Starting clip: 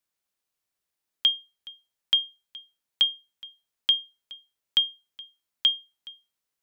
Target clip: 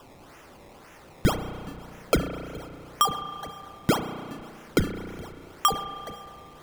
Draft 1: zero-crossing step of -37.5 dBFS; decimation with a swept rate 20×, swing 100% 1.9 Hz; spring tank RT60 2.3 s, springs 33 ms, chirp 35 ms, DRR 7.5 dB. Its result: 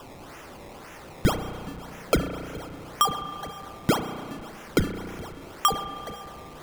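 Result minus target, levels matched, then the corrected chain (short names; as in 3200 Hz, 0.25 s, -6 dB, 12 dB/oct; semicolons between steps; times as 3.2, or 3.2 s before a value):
zero-crossing step: distortion +6 dB
zero-crossing step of -43.5 dBFS; decimation with a swept rate 20×, swing 100% 1.9 Hz; spring tank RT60 2.3 s, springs 33 ms, chirp 35 ms, DRR 7.5 dB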